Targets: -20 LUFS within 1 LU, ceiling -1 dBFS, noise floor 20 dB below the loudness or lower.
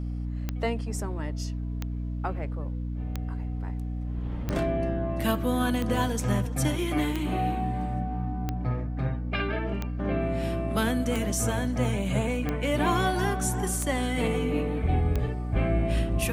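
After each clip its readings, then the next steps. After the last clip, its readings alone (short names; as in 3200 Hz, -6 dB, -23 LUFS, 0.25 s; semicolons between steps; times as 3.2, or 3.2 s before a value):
clicks 12; hum 60 Hz; harmonics up to 300 Hz; hum level -29 dBFS; loudness -28.5 LUFS; peak -13.0 dBFS; loudness target -20.0 LUFS
-> de-click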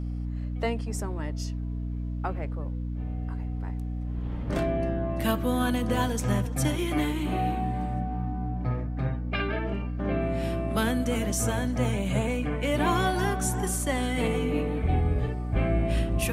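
clicks 0; hum 60 Hz; harmonics up to 300 Hz; hum level -29 dBFS
-> notches 60/120/180/240/300 Hz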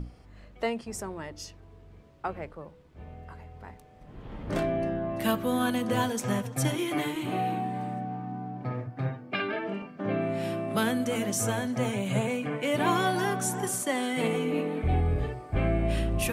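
hum none; loudness -29.5 LUFS; peak -13.5 dBFS; loudness target -20.0 LUFS
-> gain +9.5 dB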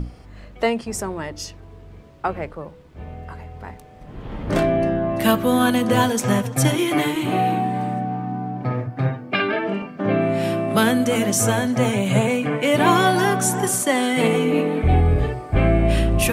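loudness -20.0 LUFS; peak -4.0 dBFS; noise floor -43 dBFS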